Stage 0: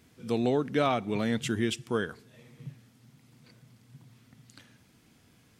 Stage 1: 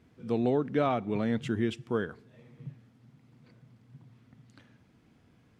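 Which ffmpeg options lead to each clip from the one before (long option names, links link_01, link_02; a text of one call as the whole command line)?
ffmpeg -i in.wav -af "lowpass=frequency=1400:poles=1" out.wav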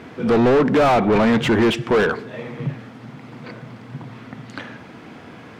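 ffmpeg -i in.wav -filter_complex "[0:a]asplit=2[link_01][link_02];[link_02]highpass=frequency=720:poles=1,volume=32dB,asoftclip=type=tanh:threshold=-14dB[link_03];[link_01][link_03]amix=inputs=2:normalize=0,lowpass=frequency=1500:poles=1,volume=-6dB,volume=6.5dB" out.wav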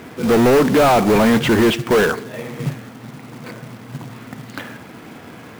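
ffmpeg -i in.wav -af "acrusher=bits=3:mode=log:mix=0:aa=0.000001,volume=2dB" out.wav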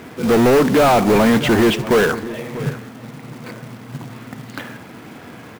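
ffmpeg -i in.wav -filter_complex "[0:a]asplit=2[link_01][link_02];[link_02]adelay=641.4,volume=-15dB,highshelf=frequency=4000:gain=-14.4[link_03];[link_01][link_03]amix=inputs=2:normalize=0" out.wav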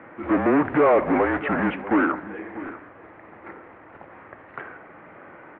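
ffmpeg -i in.wav -af "highpass=frequency=430:width_type=q:width=0.5412,highpass=frequency=430:width_type=q:width=1.307,lowpass=frequency=2300:width_type=q:width=0.5176,lowpass=frequency=2300:width_type=q:width=0.7071,lowpass=frequency=2300:width_type=q:width=1.932,afreqshift=-150,volume=-3dB" out.wav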